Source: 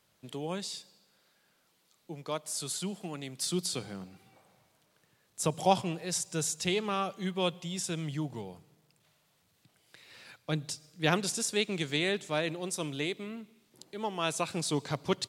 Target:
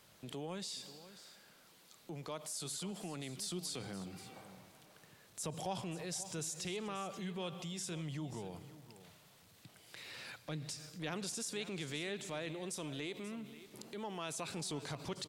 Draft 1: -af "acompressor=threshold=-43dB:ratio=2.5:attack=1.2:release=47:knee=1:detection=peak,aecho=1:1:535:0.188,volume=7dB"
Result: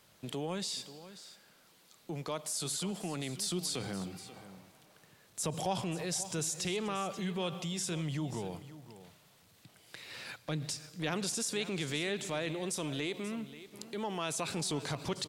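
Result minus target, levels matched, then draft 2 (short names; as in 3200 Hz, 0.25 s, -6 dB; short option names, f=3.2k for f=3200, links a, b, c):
compressor: peak gain reduction -6.5 dB
-af "acompressor=threshold=-53.5dB:ratio=2.5:attack=1.2:release=47:knee=1:detection=peak,aecho=1:1:535:0.188,volume=7dB"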